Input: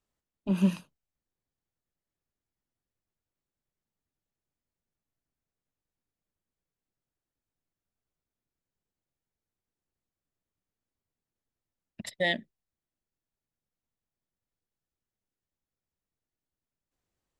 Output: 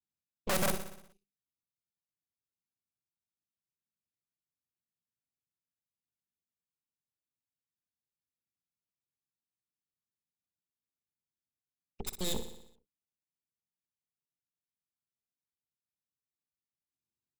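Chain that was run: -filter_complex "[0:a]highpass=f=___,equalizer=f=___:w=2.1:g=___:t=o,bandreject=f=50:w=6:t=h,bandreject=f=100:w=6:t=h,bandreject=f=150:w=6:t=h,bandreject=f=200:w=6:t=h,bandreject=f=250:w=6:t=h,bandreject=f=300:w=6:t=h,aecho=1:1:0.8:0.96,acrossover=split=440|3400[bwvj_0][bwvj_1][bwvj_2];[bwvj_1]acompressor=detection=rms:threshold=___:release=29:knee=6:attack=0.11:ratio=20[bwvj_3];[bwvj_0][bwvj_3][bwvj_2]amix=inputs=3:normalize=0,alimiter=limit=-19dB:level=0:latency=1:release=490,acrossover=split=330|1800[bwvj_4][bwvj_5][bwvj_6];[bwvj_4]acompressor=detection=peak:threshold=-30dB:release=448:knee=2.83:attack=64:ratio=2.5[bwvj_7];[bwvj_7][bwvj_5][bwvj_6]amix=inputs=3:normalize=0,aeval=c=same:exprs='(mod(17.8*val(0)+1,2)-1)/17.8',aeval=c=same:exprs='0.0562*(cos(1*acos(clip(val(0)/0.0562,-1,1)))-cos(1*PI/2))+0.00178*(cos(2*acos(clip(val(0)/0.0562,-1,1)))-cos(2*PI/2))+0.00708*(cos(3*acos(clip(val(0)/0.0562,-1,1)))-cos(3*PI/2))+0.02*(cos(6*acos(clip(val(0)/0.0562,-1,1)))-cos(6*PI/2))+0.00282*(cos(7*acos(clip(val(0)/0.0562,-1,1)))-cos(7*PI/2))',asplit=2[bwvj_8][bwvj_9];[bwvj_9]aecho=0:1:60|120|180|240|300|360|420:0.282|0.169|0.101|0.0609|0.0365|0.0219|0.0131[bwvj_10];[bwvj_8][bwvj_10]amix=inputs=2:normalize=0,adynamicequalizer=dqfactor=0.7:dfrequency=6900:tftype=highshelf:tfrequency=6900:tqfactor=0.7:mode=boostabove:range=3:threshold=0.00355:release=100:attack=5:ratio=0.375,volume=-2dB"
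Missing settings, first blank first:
110, 1100, -12.5, -51dB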